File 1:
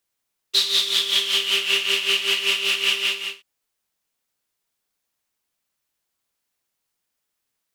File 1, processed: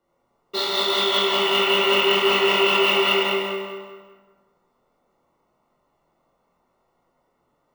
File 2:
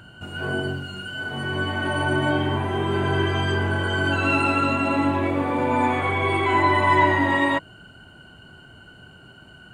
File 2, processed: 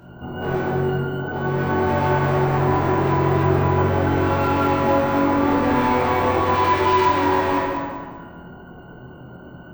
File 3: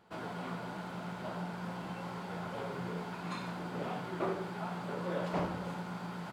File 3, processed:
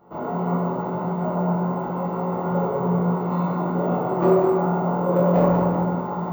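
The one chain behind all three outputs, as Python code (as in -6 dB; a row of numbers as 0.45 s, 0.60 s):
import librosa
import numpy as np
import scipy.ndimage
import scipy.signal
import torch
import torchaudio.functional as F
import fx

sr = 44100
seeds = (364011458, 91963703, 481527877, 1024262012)

p1 = fx.peak_eq(x, sr, hz=86.0, db=-10.0, octaves=0.48)
p2 = fx.hum_notches(p1, sr, base_hz=50, count=4)
p3 = fx.over_compress(p2, sr, threshold_db=-24.0, ratio=-1.0)
p4 = p2 + (p3 * 10.0 ** (-2.0 / 20.0))
p5 = scipy.signal.savgol_filter(p4, 65, 4, mode='constant')
p6 = np.clip(p5, -10.0 ** (-22.0 / 20.0), 10.0 ** (-22.0 / 20.0))
p7 = fx.doubler(p6, sr, ms=24.0, db=-5.0)
p8 = fx.echo_feedback(p7, sr, ms=194, feedback_pct=33, wet_db=-7)
p9 = fx.rev_plate(p8, sr, seeds[0], rt60_s=1.5, hf_ratio=0.5, predelay_ms=0, drr_db=-3.5)
p10 = np.repeat(p9[::2], 2)[:len(p9)]
y = p10 * 10.0 ** (-6 / 20.0) / np.max(np.abs(p10))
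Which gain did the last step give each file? +9.0 dB, -2.0 dB, +4.5 dB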